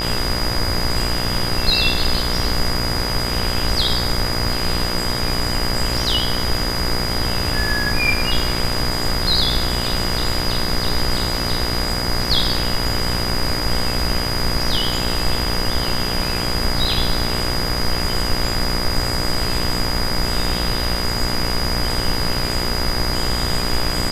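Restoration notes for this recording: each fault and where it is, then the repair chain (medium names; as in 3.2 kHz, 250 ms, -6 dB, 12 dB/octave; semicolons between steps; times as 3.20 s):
buzz 60 Hz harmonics 37 -25 dBFS
whine 4.9 kHz -24 dBFS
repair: de-hum 60 Hz, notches 37; band-stop 4.9 kHz, Q 30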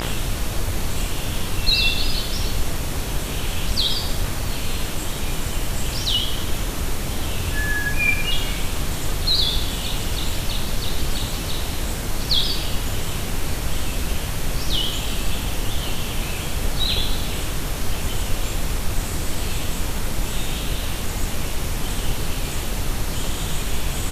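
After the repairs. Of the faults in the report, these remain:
nothing left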